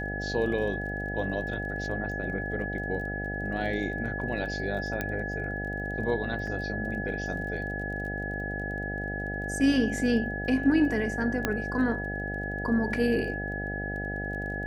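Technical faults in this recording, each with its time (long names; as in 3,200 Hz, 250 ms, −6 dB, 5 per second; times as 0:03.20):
mains buzz 50 Hz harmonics 16 −35 dBFS
surface crackle 21 per second −40 dBFS
whistle 1,700 Hz −34 dBFS
0:05.01: click −16 dBFS
0:06.47: drop-out 3.9 ms
0:11.45: click −11 dBFS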